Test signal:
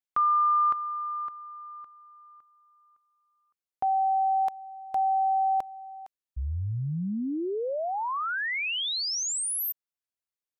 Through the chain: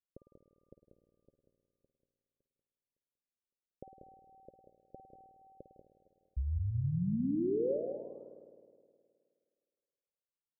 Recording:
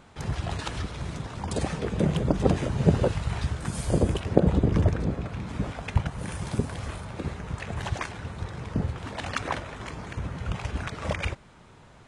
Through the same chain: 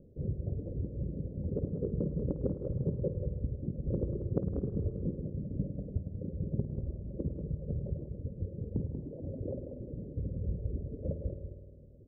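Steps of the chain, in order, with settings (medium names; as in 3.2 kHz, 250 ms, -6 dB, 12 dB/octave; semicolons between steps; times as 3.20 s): reverb removal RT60 1.2 s; Chebyshev low-pass 560 Hz, order 6; compression, threshold -30 dBFS; on a send: delay 188 ms -7.5 dB; on the sum: spring tank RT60 2.1 s, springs 52 ms, chirp 45 ms, DRR 7.5 dB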